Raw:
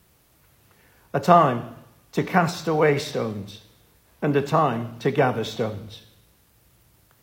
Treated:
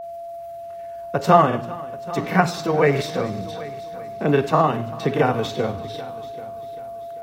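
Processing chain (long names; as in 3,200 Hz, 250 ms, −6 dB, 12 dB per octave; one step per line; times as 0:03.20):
granular cloud 100 ms, grains 20 per second, spray 25 ms, pitch spread up and down by 0 semitones
steady tone 680 Hz −34 dBFS
echo machine with several playback heads 392 ms, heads first and second, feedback 40%, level −20 dB
level +3 dB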